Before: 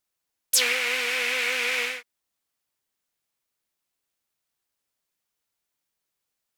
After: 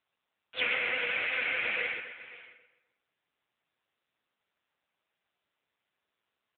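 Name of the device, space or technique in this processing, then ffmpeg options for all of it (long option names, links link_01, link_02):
satellite phone: -filter_complex "[0:a]asplit=3[link_01][link_02][link_03];[link_01]afade=type=out:start_time=1.12:duration=0.02[link_04];[link_02]adynamicequalizer=threshold=0.00398:dfrequency=470:dqfactor=6.2:tfrequency=470:tqfactor=6.2:attack=5:release=100:ratio=0.375:range=2:mode=cutabove:tftype=bell,afade=type=in:start_time=1.12:duration=0.02,afade=type=out:start_time=1.61:duration=0.02[link_05];[link_03]afade=type=in:start_time=1.61:duration=0.02[link_06];[link_04][link_05][link_06]amix=inputs=3:normalize=0,highpass=390,lowpass=3000,asplit=2[link_07][link_08];[link_08]adelay=128,lowpass=frequency=3600:poles=1,volume=-8dB,asplit=2[link_09][link_10];[link_10]adelay=128,lowpass=frequency=3600:poles=1,volume=0.44,asplit=2[link_11][link_12];[link_12]adelay=128,lowpass=frequency=3600:poles=1,volume=0.44,asplit=2[link_13][link_14];[link_14]adelay=128,lowpass=frequency=3600:poles=1,volume=0.44,asplit=2[link_15][link_16];[link_16]adelay=128,lowpass=frequency=3600:poles=1,volume=0.44[link_17];[link_07][link_09][link_11][link_13][link_15][link_17]amix=inputs=6:normalize=0,aecho=1:1:536:0.133" -ar 8000 -c:a libopencore_amrnb -b:a 6700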